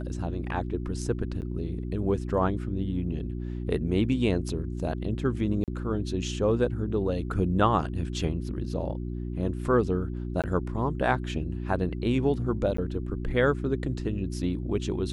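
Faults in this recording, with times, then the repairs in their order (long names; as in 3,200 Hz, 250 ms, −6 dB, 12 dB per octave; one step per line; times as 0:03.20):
mains hum 60 Hz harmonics 6 −33 dBFS
0:01.41–0:01.42: drop-out 9 ms
0:05.64–0:05.68: drop-out 38 ms
0:10.42–0:10.44: drop-out 17 ms
0:12.77–0:12.78: drop-out 14 ms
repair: hum removal 60 Hz, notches 6
repair the gap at 0:01.41, 9 ms
repair the gap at 0:05.64, 38 ms
repair the gap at 0:10.42, 17 ms
repair the gap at 0:12.77, 14 ms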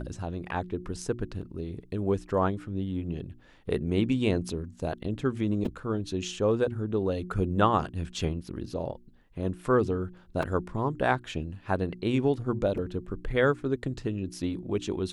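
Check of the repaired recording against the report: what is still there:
none of them is left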